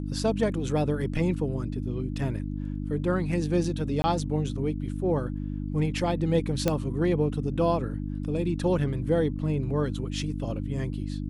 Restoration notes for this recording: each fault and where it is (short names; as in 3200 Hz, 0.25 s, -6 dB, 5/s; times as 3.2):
hum 50 Hz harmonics 6 -32 dBFS
4.02–4.04 gap 20 ms
6.68 pop -10 dBFS